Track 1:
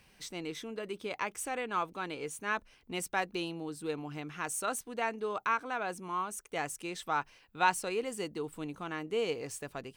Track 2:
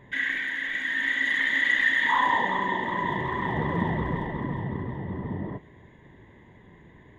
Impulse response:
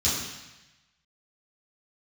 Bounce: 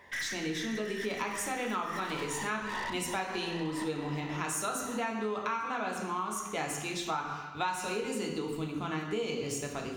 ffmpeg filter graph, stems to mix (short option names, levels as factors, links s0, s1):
-filter_complex "[0:a]agate=range=0.282:threshold=0.00126:ratio=16:detection=peak,volume=1.12,asplit=3[s0][s1][s2];[s1]volume=0.316[s3];[1:a]highpass=610,aeval=exprs='(tanh(56.2*val(0)+0.2)-tanh(0.2))/56.2':c=same,volume=1.26[s4];[s2]apad=whole_len=316656[s5];[s4][s5]sidechaincompress=threshold=0.00631:ratio=8:attack=16:release=173[s6];[2:a]atrim=start_sample=2205[s7];[s3][s7]afir=irnorm=-1:irlink=0[s8];[s0][s6][s8]amix=inputs=3:normalize=0,acompressor=threshold=0.0316:ratio=6"